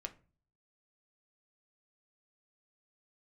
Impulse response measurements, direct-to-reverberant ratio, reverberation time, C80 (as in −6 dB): 5.0 dB, 0.35 s, 22.5 dB